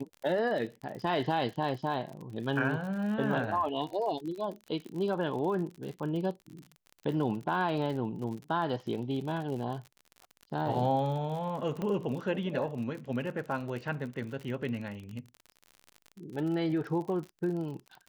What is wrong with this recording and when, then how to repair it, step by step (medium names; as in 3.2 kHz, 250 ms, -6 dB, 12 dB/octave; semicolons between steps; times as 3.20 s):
crackle 52 per s -38 dBFS
11.82 s: pop -23 dBFS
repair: de-click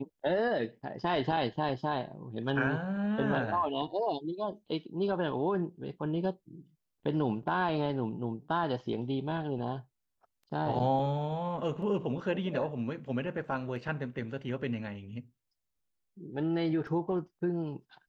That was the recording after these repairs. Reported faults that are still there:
11.82 s: pop